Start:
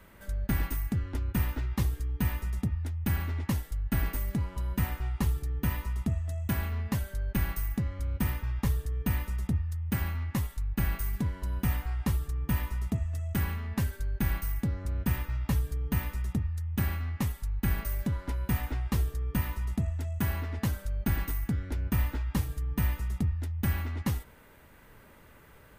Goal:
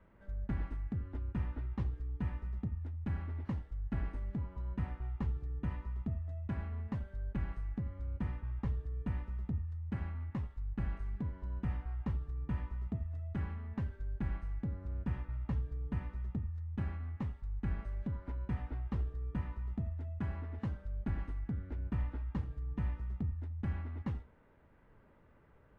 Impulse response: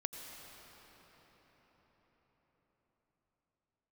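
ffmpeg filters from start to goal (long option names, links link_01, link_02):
-filter_complex "[0:a]adynamicsmooth=sensitivity=0.5:basefreq=1700[link_01];[1:a]atrim=start_sample=2205,afade=type=out:start_time=0.13:duration=0.01,atrim=end_sample=6174[link_02];[link_01][link_02]afir=irnorm=-1:irlink=0,volume=-5.5dB" -ar 22050 -c:a aac -b:a 48k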